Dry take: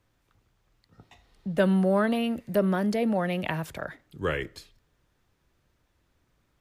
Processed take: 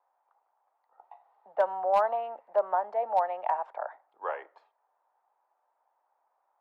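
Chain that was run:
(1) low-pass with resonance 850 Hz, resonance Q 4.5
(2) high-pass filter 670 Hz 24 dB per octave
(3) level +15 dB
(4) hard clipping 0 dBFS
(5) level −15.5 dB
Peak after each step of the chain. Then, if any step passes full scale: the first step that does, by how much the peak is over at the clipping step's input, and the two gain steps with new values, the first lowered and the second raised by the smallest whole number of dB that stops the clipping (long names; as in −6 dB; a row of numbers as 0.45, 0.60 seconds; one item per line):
−6.0, −11.5, +3.5, 0.0, −15.5 dBFS
step 3, 3.5 dB
step 3 +11 dB, step 5 −11.5 dB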